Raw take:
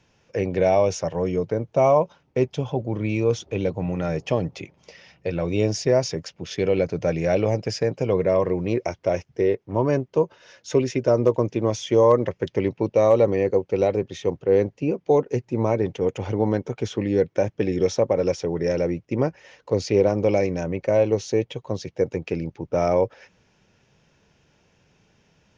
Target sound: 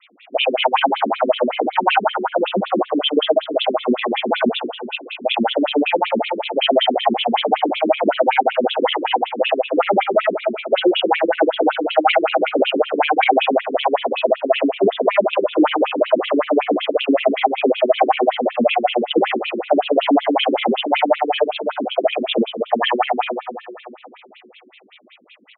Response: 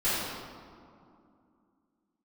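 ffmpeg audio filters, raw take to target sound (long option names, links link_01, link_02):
-filter_complex "[0:a]adynamicequalizer=threshold=0.00398:dfrequency=2000:dqfactor=2.3:tfrequency=2000:tqfactor=2.3:attack=5:release=100:ratio=0.375:range=3.5:mode=cutabove:tftype=bell,asuperstop=centerf=4300:order=8:qfactor=1.1,bandreject=frequency=60:width_type=h:width=6,bandreject=frequency=120:width_type=h:width=6,aecho=1:1:14|48|67|78:0.398|0.631|0.708|0.376,asplit=2[link_01][link_02];[1:a]atrim=start_sample=2205[link_03];[link_02][link_03]afir=irnorm=-1:irlink=0,volume=-18.5dB[link_04];[link_01][link_04]amix=inputs=2:normalize=0,asetrate=60591,aresample=44100,atempo=0.727827,aeval=exprs='(tanh(2.51*val(0)+0.2)-tanh(0.2))/2.51':channel_layout=same,equalizer=frequency=2800:width=1.6:gain=14.5,alimiter=level_in=11.5dB:limit=-1dB:release=50:level=0:latency=1,afftfilt=real='re*between(b*sr/1024,270*pow(3100/270,0.5+0.5*sin(2*PI*5.3*pts/sr))/1.41,270*pow(3100/270,0.5+0.5*sin(2*PI*5.3*pts/sr))*1.41)':imag='im*between(b*sr/1024,270*pow(3100/270,0.5+0.5*sin(2*PI*5.3*pts/sr))/1.41,270*pow(3100/270,0.5+0.5*sin(2*PI*5.3*pts/sr))*1.41)':win_size=1024:overlap=0.75"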